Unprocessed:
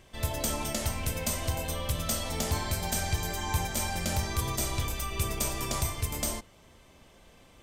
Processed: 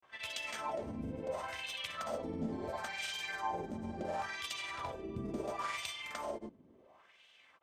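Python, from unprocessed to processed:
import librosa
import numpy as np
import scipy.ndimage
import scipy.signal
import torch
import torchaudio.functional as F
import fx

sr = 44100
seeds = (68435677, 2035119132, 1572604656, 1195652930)

y = fx.granulator(x, sr, seeds[0], grain_ms=100.0, per_s=20.0, spray_ms=100.0, spread_st=0)
y = fx.filter_lfo_bandpass(y, sr, shape='sine', hz=0.72, low_hz=240.0, high_hz=3000.0, q=2.5)
y = F.gain(torch.from_numpy(y), 5.0).numpy()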